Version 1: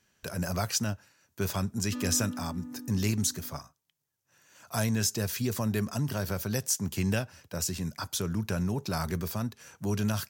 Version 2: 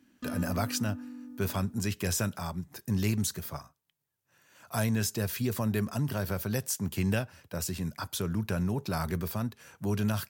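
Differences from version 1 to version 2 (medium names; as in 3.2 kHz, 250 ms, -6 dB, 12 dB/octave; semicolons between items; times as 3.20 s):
speech: add peaking EQ 6.1 kHz -6.5 dB 0.8 oct; background: entry -1.70 s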